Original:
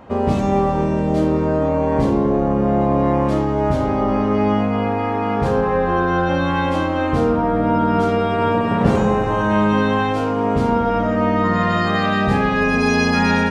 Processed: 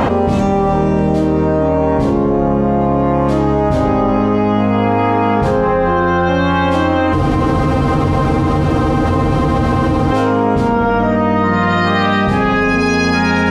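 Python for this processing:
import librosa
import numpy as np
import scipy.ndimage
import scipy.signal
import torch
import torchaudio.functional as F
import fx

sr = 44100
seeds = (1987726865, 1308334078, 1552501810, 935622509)

y = fx.spec_freeze(x, sr, seeds[0], at_s=7.16, hold_s=2.95)
y = fx.env_flatten(y, sr, amount_pct=100)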